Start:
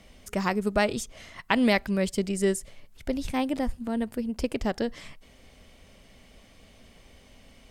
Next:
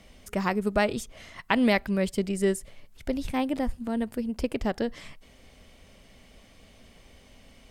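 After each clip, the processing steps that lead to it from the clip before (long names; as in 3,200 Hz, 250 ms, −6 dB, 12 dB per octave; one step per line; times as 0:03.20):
dynamic equaliser 6,400 Hz, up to −5 dB, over −49 dBFS, Q 0.98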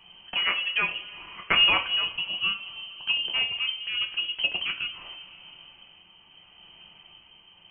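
voice inversion scrambler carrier 3,100 Hz
coupled-rooms reverb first 0.29 s, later 2.7 s, from −19 dB, DRR 2 dB
shaped tremolo triangle 0.77 Hz, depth 45%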